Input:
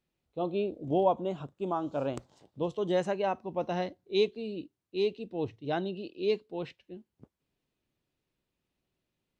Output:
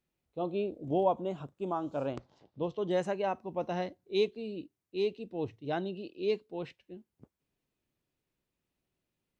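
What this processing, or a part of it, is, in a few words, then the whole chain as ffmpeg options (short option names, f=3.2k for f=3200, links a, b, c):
exciter from parts: -filter_complex "[0:a]asettb=1/sr,asplit=3[a][b][c];[a]atrim=end=2.134[d];[b]atrim=start=2.13:end=2.91,asetpts=PTS-STARTPTS,afade=t=in:d=0.004:c=qsin,afade=t=out:st=0.776:d=0.004:c=qsin,lowpass=f=5.3k:w=0.5412,lowpass=f=5.3k:w=1.3066[e];[c]atrim=start=2.906[f];[d][e]acrossfade=d=0.004:c1=hsin:c2=qsin[g];[g][f]acrossfade=d=0.004:c1=qsin:c2=hsin,asplit=2[h][i];[i]highpass=3k,asoftclip=type=tanh:threshold=-32dB,highpass=f=2.2k:w=0.5412,highpass=f=2.2k:w=1.3066,volume=-12.5dB[j];[h][j]amix=inputs=2:normalize=0,volume=-2dB"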